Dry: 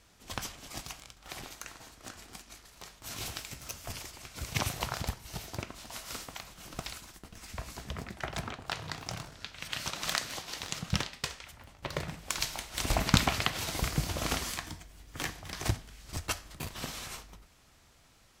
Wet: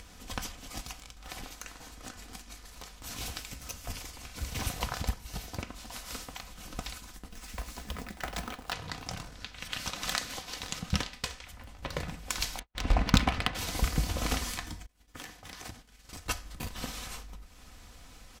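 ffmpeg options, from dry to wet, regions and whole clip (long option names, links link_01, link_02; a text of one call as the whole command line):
ffmpeg -i in.wav -filter_complex "[0:a]asettb=1/sr,asplit=3[link_01][link_02][link_03];[link_01]atrim=end=4.004[link_04];[link_02]atrim=start=4:end=4.67,asetpts=PTS-STARTPTS,afade=type=in:duration=0.004:curve=qsin,afade=type=out:start_time=0.666:duration=0.004:curve=qsin,asplit=2[link_05][link_06];[link_06]adelay=45,volume=-10.5dB[link_07];[link_05][link_07]amix=inputs=2:normalize=0,atrim=end_sample=29547,asoftclip=type=hard:threshold=-31dB[link_08];[link_03]atrim=start=4.666[link_09];[link_04][link_08]acrossfade=duration=0.004:curve1=hsin:curve2=qsin[link_10];[link_10][link_09]acrossfade=duration=0.004:curve1=qsin:curve2=hsin,asettb=1/sr,asplit=3[link_11][link_12][link_13];[link_11]atrim=end=7.304[link_14];[link_12]atrim=start=7.3:end=8.73,asetpts=PTS-STARTPTS,afade=type=in:duration=0.004:curve=qsin,afade=type=out:start_time=1.426:duration=0.004:curve=qsin,equalizer=frequency=100:width_type=o:width=1:gain=-9.5,acrusher=bits=2:mode=log:mix=0:aa=0.000001[link_15];[link_13]atrim=start=8.726[link_16];[link_14][link_15]acrossfade=duration=0.004:curve1=hsin:curve2=qsin[link_17];[link_17][link_16]acrossfade=duration=0.004:curve1=qsin:curve2=hsin,asettb=1/sr,asplit=3[link_18][link_19][link_20];[link_18]atrim=end=12.594[link_21];[link_19]atrim=start=12.59:end=13.55,asetpts=PTS-STARTPTS,afade=type=in:duration=0.004:curve=qsin,afade=type=out:start_time=0.956:duration=0.004:curve=qsin,agate=range=-44dB:threshold=-42dB:ratio=16:release=100:detection=peak,adynamicsmooth=sensitivity=3:basefreq=2200[link_22];[link_20]atrim=start=13.546[link_23];[link_21][link_22]acrossfade=duration=0.004:curve1=hsin:curve2=qsin[link_24];[link_24][link_23]acrossfade=duration=0.004:curve1=qsin:curve2=hsin,asettb=1/sr,asplit=3[link_25][link_26][link_27];[link_25]atrim=end=14.864[link_28];[link_26]atrim=start=14.86:end=16.26,asetpts=PTS-STARTPTS,afade=type=in:duration=0.004:curve=qsin,afade=type=out:start_time=1.396:duration=0.004:curve=qsin,agate=range=-33dB:threshold=-42dB:ratio=3:release=100:detection=peak,lowshelf=frequency=130:gain=-12,acompressor=threshold=-44dB:ratio=2.5:attack=3.2:release=140:knee=1:detection=peak[link_29];[link_27]atrim=start=16.256[link_30];[link_28][link_29]acrossfade=duration=0.004:curve1=hsin:curve2=qsin[link_31];[link_31][link_30]acrossfade=duration=0.004:curve1=qsin:curve2=hsin,lowshelf=frequency=100:gain=8,aecho=1:1:4:0.42,acompressor=mode=upward:threshold=-40dB:ratio=2.5,volume=-1dB" out.wav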